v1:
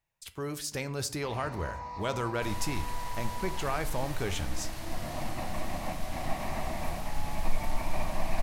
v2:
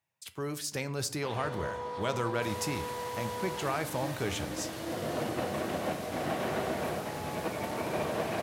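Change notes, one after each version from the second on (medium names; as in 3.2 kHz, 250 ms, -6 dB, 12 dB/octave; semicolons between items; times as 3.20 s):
first sound: remove static phaser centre 2.2 kHz, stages 8; master: add high-pass 94 Hz 24 dB/octave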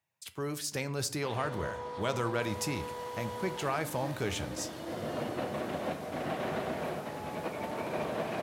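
first sound: send off; second sound -8.0 dB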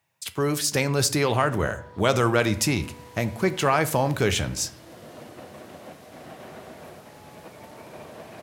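speech +11.5 dB; first sound -8.0 dB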